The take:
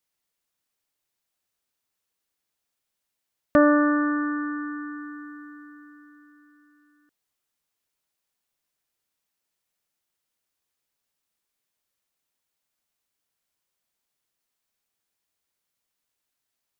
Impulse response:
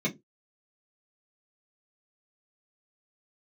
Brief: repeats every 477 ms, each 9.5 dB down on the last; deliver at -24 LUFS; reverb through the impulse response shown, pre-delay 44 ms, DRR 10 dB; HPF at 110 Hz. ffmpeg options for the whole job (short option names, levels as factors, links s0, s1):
-filter_complex "[0:a]highpass=110,aecho=1:1:477|954|1431|1908:0.335|0.111|0.0365|0.012,asplit=2[s0][s1];[1:a]atrim=start_sample=2205,adelay=44[s2];[s1][s2]afir=irnorm=-1:irlink=0,volume=0.126[s3];[s0][s3]amix=inputs=2:normalize=0,volume=0.668"